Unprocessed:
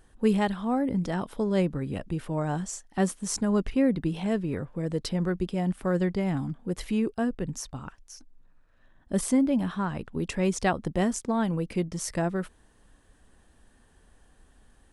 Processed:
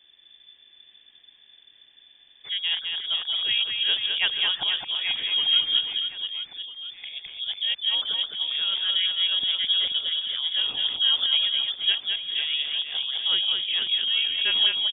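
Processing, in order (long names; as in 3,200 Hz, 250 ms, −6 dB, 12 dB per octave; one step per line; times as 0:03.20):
played backwards from end to start
reverse bouncing-ball delay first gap 210 ms, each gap 1.3×, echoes 5
voice inversion scrambler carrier 3,500 Hz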